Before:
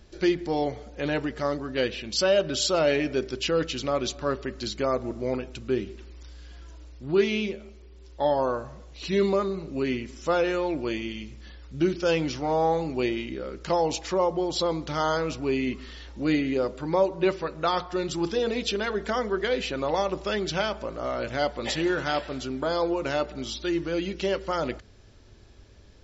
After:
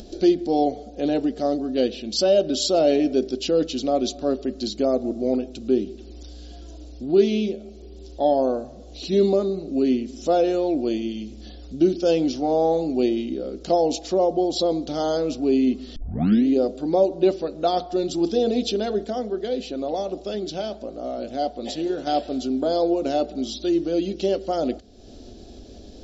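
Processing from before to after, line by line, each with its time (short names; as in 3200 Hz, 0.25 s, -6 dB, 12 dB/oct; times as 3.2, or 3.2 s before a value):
15.96 tape start 0.51 s
19.04–22.07 flange 1.6 Hz, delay 1.7 ms, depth 5.7 ms, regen -89%
whole clip: bell 720 Hz +14 dB 0.3 oct; upward compressor, threshold -32 dBFS; graphic EQ 125/250/500/1000/2000/4000 Hz -10/+11/+4/-11/-11/+5 dB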